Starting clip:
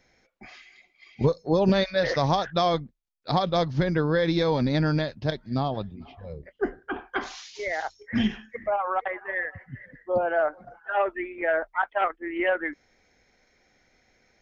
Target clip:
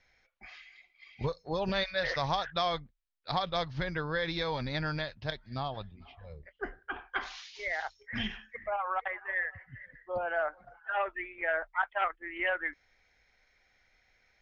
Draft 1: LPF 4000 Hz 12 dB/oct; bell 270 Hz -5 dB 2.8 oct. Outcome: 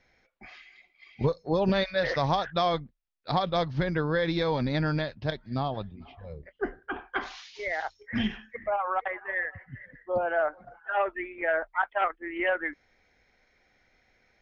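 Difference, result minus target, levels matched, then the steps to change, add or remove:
250 Hz band +4.5 dB
change: bell 270 Hz -15.5 dB 2.8 oct

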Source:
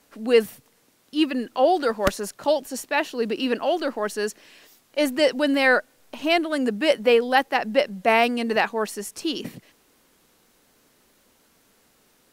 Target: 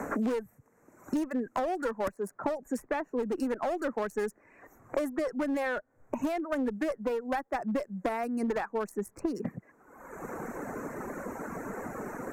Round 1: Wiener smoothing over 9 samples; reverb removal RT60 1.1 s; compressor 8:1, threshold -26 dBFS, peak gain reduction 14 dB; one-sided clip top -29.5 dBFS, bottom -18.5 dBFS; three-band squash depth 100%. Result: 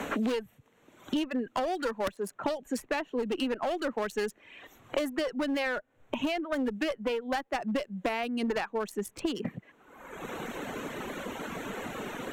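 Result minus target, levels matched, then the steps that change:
4000 Hz band +12.5 dB
add after compressor: Butterworth band-stop 3300 Hz, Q 0.78

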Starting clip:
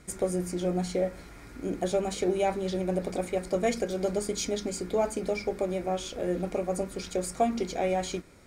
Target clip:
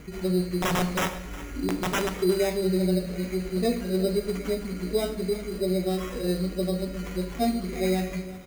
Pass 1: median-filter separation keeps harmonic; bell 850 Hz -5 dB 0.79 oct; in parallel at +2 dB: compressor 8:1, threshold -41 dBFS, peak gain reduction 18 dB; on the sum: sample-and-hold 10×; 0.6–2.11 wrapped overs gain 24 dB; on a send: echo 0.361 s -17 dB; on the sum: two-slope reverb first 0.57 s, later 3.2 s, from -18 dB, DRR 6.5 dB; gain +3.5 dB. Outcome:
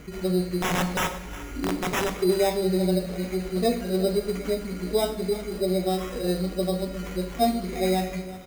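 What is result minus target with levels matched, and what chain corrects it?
1000 Hz band +2.5 dB
median-filter separation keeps harmonic; bell 850 Hz -15.5 dB 0.79 oct; in parallel at +2 dB: compressor 8:1, threshold -41 dBFS, peak gain reduction 17 dB; on the sum: sample-and-hold 10×; 0.6–2.11 wrapped overs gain 24 dB; on a send: echo 0.361 s -17 dB; on the sum: two-slope reverb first 0.57 s, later 3.2 s, from -18 dB, DRR 6.5 dB; gain +3.5 dB

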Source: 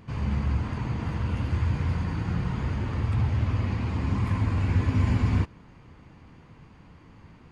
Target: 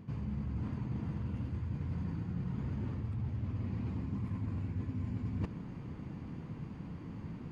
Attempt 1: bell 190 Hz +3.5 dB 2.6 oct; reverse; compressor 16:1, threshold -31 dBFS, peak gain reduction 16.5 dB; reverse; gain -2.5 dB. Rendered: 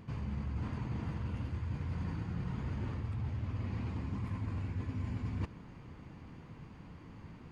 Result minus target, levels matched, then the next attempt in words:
250 Hz band -3.0 dB
bell 190 Hz +12.5 dB 2.6 oct; reverse; compressor 16:1, threshold -31 dBFS, peak gain reduction 22 dB; reverse; gain -2.5 dB

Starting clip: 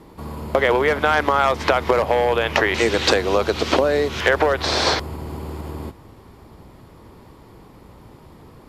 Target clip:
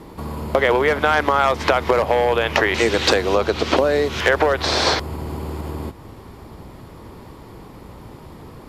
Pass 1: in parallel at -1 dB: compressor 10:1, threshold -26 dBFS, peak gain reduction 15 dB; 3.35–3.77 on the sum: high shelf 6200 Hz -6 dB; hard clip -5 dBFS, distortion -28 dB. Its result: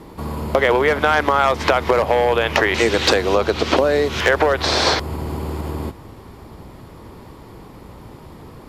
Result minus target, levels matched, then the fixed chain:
compressor: peak gain reduction -8 dB
in parallel at -1 dB: compressor 10:1, threshold -35 dBFS, peak gain reduction 23 dB; 3.35–3.77 on the sum: high shelf 6200 Hz -6 dB; hard clip -5 dBFS, distortion -34 dB

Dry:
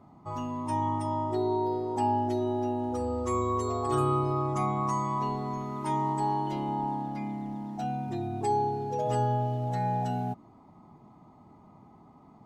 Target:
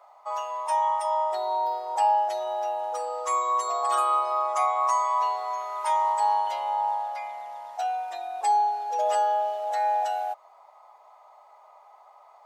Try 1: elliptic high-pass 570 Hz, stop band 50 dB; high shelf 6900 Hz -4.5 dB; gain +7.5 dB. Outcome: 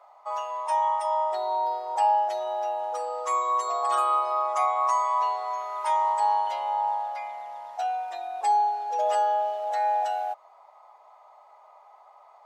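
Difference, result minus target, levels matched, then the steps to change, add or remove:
8000 Hz band -3.5 dB
change: high shelf 6900 Hz +2 dB

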